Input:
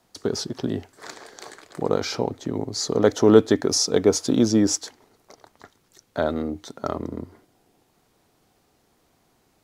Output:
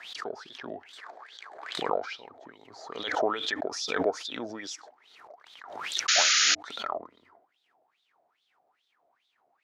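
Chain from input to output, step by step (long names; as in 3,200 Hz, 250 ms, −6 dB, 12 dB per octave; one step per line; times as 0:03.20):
LFO wah 2.4 Hz 630–3,700 Hz, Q 10
sound drawn into the spectrogram noise, 0:06.08–0:06.55, 1,200–7,100 Hz −30 dBFS
background raised ahead of every attack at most 51 dB per second
level +7.5 dB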